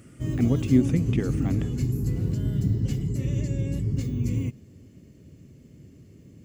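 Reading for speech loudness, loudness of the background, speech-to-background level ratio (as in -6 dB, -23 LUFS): -26.0 LUFS, -27.5 LUFS, 1.5 dB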